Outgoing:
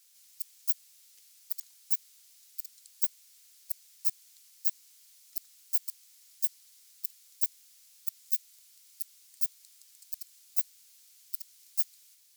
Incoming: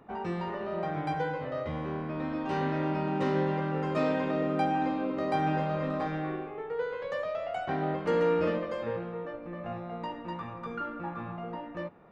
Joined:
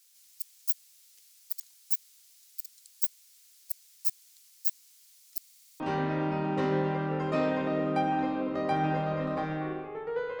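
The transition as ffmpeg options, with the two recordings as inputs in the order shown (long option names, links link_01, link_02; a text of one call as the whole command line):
ffmpeg -i cue0.wav -i cue1.wav -filter_complex "[0:a]apad=whole_dur=10.4,atrim=end=10.4,asplit=7[link_01][link_02][link_03][link_04][link_05][link_06][link_07];[link_01]atrim=end=5.442[link_08];[link_02]atrim=start=5.378:end=5.442[link_09];[link_03]atrim=start=5.378:end=5.442[link_10];[link_04]atrim=start=5.378:end=5.442[link_11];[link_05]atrim=start=5.378:end=5.442[link_12];[link_06]atrim=start=5.378:end=5.442[link_13];[link_07]atrim=start=5.378:end=5.442[link_14];[1:a]atrim=start=2.428:end=7.03[link_15];[link_08][link_09]acrossfade=duration=0.004:curve1=hsin:curve2=hsin[link_16];[link_16][link_10]acrossfade=duration=0.004:curve1=hsin:curve2=hsin[link_17];[link_17][link_11]acrossfade=duration=0.004:curve1=hsin:curve2=hsin[link_18];[link_18][link_12]acrossfade=duration=0.004:curve1=hsin:curve2=hsin[link_19];[link_19][link_13]acrossfade=duration=0.004:curve1=hsin:curve2=hsin[link_20];[link_20][link_14]acrossfade=duration=0.004:curve1=hsin:curve2=hsin[link_21];[link_21][link_15]acrossfade=duration=0.004:curve1=hsin:curve2=hsin" out.wav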